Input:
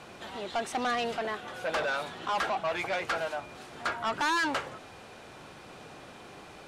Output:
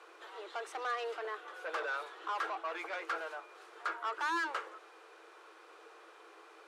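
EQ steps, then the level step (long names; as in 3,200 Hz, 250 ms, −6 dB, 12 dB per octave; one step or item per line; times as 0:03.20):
Chebyshev high-pass with heavy ripple 320 Hz, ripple 9 dB
−3.0 dB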